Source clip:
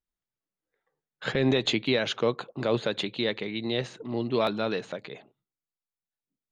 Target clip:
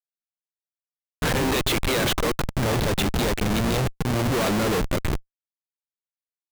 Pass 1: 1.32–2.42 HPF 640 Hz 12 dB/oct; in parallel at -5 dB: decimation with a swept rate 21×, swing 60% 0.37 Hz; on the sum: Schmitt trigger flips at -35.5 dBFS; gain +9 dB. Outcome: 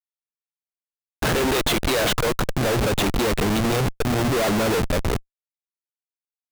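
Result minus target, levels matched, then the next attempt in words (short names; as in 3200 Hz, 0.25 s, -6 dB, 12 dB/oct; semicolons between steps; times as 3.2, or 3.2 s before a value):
decimation with a swept rate: distortion -26 dB
1.32–2.42 HPF 640 Hz 12 dB/oct; in parallel at -5 dB: decimation with a swept rate 68×, swing 60% 0.37 Hz; on the sum: Schmitt trigger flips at -35.5 dBFS; gain +9 dB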